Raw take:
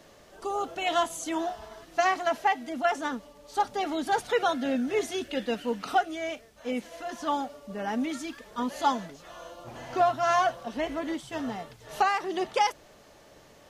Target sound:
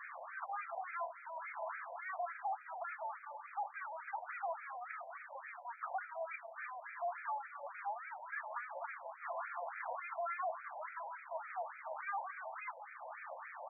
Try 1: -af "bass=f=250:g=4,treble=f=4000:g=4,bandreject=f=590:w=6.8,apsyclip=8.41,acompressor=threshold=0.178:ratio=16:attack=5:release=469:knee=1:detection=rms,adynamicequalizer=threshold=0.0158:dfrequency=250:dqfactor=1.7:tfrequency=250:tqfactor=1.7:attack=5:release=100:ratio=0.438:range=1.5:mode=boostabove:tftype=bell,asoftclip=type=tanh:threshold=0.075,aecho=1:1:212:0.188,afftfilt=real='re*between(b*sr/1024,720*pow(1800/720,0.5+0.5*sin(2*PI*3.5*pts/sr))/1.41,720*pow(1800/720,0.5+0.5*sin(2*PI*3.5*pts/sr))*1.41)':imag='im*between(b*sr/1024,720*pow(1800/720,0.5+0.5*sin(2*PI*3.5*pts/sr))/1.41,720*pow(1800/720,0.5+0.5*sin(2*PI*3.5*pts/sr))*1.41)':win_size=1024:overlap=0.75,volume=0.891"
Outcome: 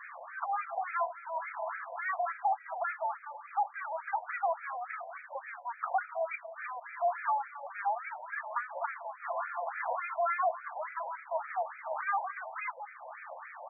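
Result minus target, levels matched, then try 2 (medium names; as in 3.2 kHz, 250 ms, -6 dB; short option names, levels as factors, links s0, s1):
saturation: distortion -6 dB
-af "bass=f=250:g=4,treble=f=4000:g=4,bandreject=f=590:w=6.8,apsyclip=8.41,acompressor=threshold=0.178:ratio=16:attack=5:release=469:knee=1:detection=rms,adynamicequalizer=threshold=0.0158:dfrequency=250:dqfactor=1.7:tfrequency=250:tqfactor=1.7:attack=5:release=100:ratio=0.438:range=1.5:mode=boostabove:tftype=bell,asoftclip=type=tanh:threshold=0.0211,aecho=1:1:212:0.188,afftfilt=real='re*between(b*sr/1024,720*pow(1800/720,0.5+0.5*sin(2*PI*3.5*pts/sr))/1.41,720*pow(1800/720,0.5+0.5*sin(2*PI*3.5*pts/sr))*1.41)':imag='im*between(b*sr/1024,720*pow(1800/720,0.5+0.5*sin(2*PI*3.5*pts/sr))/1.41,720*pow(1800/720,0.5+0.5*sin(2*PI*3.5*pts/sr))*1.41)':win_size=1024:overlap=0.75,volume=0.891"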